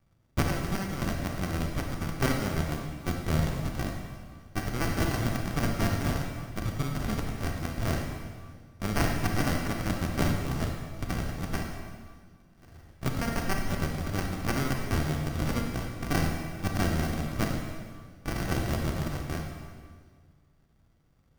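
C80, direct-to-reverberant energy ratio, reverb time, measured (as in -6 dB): 4.5 dB, 1.5 dB, 1.7 s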